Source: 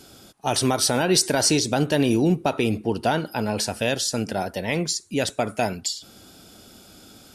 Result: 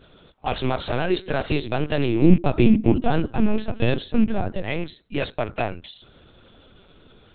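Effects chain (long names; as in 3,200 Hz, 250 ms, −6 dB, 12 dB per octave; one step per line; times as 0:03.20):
loose part that buzzes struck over −26 dBFS, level −26 dBFS
high-pass filter 93 Hz 12 dB per octave
0:02.23–0:04.62: parametric band 220 Hz +13.5 dB 1.2 octaves
linear-prediction vocoder at 8 kHz pitch kept
level −1 dB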